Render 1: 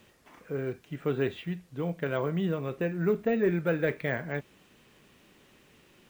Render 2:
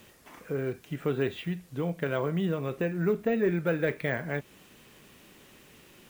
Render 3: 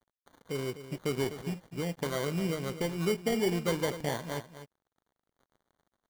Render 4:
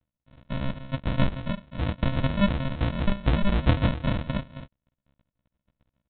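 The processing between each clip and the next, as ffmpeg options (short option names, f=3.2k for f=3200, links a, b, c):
-filter_complex "[0:a]equalizer=f=15k:w=0.34:g=7,asplit=2[a][b];[b]acompressor=threshold=-35dB:ratio=6,volume=1dB[c];[a][c]amix=inputs=2:normalize=0,volume=-2.5dB"
-af "acrusher=samples=17:mix=1:aa=0.000001,aeval=exprs='sgn(val(0))*max(abs(val(0))-0.00376,0)':c=same,aecho=1:1:251:0.251,volume=-2.5dB"
-filter_complex "[0:a]crystalizer=i=4.5:c=0,aresample=8000,acrusher=samples=20:mix=1:aa=0.000001,aresample=44100,asplit=2[a][b];[b]adelay=15,volume=-2.5dB[c];[a][c]amix=inputs=2:normalize=0,volume=5.5dB"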